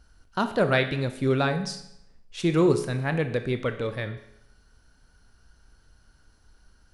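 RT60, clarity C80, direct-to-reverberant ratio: 0.80 s, 13.0 dB, 8.0 dB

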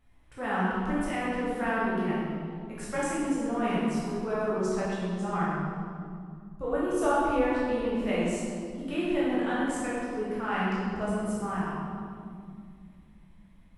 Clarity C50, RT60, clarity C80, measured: -3.5 dB, 2.3 s, -1.0 dB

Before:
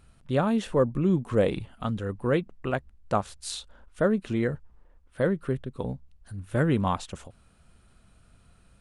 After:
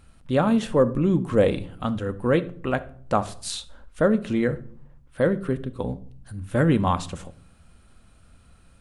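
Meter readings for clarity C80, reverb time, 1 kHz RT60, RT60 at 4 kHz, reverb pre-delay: 21.5 dB, 0.55 s, 0.50 s, 0.40 s, 4 ms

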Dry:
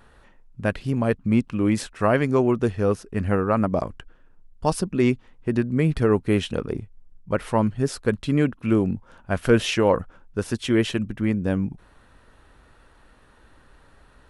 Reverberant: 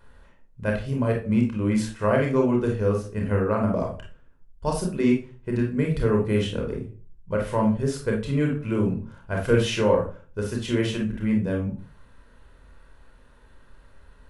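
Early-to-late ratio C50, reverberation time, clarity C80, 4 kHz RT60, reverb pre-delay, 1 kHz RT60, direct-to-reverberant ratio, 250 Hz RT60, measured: 6.0 dB, 0.40 s, 13.0 dB, 0.25 s, 28 ms, 0.35 s, 0.5 dB, 0.45 s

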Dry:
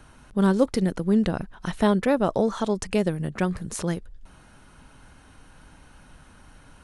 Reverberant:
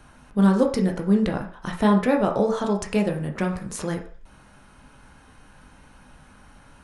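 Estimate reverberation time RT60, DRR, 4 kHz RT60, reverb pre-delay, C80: 0.45 s, 1.0 dB, 0.55 s, 11 ms, 12.5 dB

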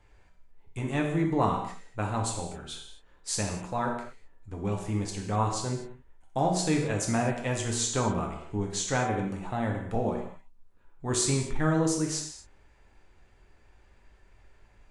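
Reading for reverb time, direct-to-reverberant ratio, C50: no single decay rate, 0.0 dB, 4.5 dB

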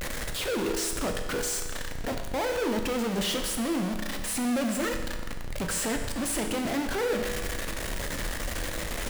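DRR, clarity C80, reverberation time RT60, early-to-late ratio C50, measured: 4.5 dB, 8.0 dB, 1.4 s, 6.5 dB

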